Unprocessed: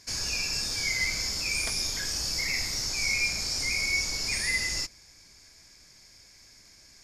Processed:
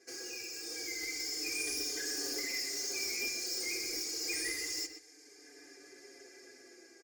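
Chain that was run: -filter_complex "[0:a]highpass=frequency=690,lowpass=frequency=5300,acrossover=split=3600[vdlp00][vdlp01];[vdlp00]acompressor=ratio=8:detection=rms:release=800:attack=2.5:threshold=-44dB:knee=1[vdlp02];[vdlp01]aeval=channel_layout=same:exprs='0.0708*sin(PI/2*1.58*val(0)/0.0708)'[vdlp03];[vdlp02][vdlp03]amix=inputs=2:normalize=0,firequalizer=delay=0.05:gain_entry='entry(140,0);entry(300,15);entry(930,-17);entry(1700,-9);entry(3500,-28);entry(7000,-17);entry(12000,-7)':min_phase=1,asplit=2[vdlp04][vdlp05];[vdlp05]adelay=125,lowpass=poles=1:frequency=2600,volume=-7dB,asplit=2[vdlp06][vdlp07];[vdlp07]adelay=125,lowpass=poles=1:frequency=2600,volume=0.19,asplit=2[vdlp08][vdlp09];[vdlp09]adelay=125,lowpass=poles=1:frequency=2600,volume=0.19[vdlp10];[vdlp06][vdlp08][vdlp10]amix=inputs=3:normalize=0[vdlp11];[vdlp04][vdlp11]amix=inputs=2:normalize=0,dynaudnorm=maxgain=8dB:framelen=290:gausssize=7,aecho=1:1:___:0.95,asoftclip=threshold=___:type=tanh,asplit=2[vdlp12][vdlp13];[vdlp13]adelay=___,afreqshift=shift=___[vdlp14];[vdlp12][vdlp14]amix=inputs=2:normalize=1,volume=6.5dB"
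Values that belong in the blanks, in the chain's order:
2.5, -32dB, 5.6, -0.29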